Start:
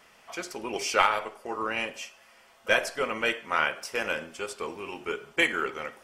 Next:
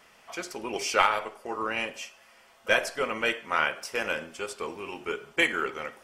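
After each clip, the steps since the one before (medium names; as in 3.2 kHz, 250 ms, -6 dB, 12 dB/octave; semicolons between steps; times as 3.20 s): no audible change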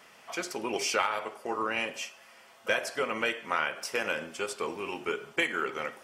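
high-pass 100 Hz 12 dB/octave; compression 2.5:1, threshold -29 dBFS, peak gain reduction 9 dB; trim +2 dB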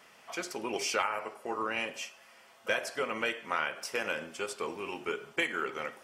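spectral replace 1.05–1.54 s, 3.1–6.5 kHz after; trim -2.5 dB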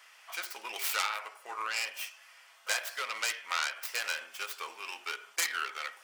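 tracing distortion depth 0.4 ms; high-pass 1.2 kHz 12 dB/octave; trim +2.5 dB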